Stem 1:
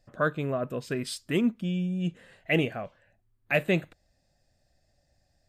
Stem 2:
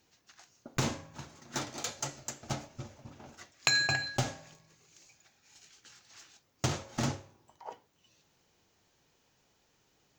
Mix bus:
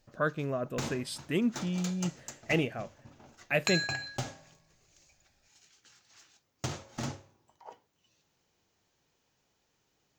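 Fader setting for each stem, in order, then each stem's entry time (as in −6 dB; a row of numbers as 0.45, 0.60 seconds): −3.5, −4.5 decibels; 0.00, 0.00 seconds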